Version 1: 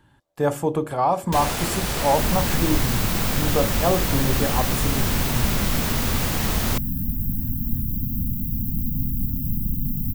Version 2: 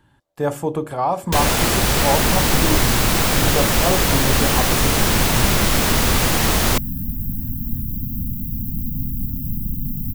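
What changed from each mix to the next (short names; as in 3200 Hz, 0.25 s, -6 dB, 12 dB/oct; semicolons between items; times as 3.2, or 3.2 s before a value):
first sound +8.0 dB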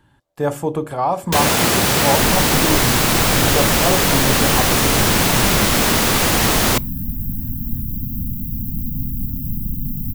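first sound: add HPF 110 Hz; reverb: on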